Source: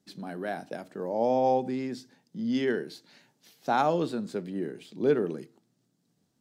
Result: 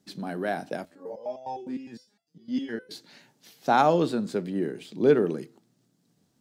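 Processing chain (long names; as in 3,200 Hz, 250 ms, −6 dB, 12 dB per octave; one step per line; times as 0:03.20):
0:00.85–0:02.91: step-sequenced resonator 9.8 Hz 84–680 Hz
level +4.5 dB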